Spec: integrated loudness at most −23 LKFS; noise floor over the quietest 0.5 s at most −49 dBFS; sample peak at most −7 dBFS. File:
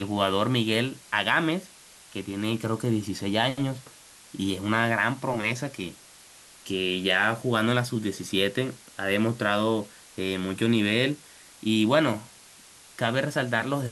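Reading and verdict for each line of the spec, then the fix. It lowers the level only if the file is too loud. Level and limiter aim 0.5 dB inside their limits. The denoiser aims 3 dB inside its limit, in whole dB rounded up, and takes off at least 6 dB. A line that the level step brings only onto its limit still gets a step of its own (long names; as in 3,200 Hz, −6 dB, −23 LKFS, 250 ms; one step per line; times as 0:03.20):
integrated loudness −26.0 LKFS: in spec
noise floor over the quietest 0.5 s −51 dBFS: in spec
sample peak −7.5 dBFS: in spec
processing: no processing needed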